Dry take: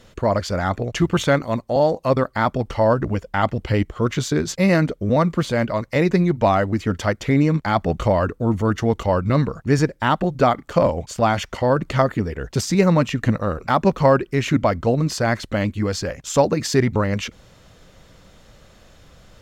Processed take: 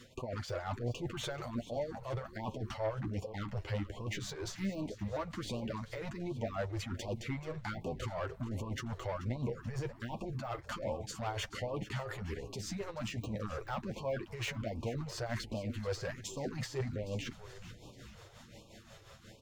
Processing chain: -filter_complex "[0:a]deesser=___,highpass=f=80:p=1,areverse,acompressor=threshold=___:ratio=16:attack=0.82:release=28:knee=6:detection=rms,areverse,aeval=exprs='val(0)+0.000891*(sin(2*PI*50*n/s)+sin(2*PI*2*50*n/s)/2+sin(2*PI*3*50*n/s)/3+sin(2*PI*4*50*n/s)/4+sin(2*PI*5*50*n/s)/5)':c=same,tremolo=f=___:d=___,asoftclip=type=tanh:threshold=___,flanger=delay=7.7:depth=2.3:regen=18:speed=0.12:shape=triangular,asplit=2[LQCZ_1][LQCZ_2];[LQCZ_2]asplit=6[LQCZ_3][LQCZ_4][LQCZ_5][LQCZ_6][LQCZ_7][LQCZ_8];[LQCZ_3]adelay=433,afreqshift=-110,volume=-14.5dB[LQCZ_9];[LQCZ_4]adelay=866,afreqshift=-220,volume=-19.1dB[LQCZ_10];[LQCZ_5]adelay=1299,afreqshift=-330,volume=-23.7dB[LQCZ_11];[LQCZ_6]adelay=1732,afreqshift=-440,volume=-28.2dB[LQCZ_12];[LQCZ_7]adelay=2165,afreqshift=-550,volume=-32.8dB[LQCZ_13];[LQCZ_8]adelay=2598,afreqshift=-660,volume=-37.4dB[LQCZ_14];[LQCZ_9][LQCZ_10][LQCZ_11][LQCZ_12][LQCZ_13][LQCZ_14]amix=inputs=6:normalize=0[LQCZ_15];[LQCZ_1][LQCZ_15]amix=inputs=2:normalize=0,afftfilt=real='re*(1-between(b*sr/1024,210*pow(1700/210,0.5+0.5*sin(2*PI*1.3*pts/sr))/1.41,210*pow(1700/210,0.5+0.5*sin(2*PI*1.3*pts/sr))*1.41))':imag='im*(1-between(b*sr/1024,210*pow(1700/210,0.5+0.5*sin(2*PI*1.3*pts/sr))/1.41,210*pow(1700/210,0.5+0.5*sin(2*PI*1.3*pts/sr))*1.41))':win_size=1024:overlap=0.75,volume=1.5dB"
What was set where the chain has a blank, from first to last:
0.75, -25dB, 5.6, 0.67, -29dB